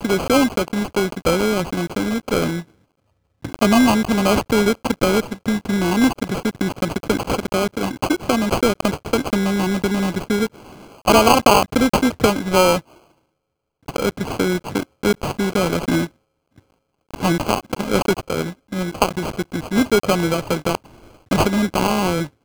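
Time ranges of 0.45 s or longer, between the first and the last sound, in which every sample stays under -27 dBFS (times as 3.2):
2.61–3.44
10.47–11.06
12.78–13.88
16.06–17.14
20.75–21.31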